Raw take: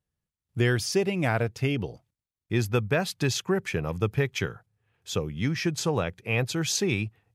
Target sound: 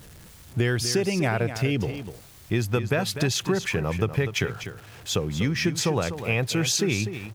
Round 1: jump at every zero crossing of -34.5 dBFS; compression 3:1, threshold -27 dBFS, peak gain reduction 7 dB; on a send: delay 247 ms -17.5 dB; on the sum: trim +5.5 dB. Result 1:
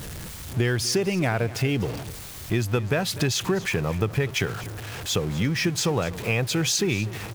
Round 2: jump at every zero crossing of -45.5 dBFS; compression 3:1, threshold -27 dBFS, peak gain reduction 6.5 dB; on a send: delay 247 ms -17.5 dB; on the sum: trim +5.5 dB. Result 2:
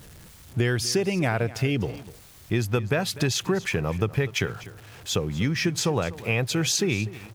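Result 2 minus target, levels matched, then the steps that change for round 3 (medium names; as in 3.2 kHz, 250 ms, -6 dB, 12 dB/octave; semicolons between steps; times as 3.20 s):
echo-to-direct -7 dB
change: delay 247 ms -10.5 dB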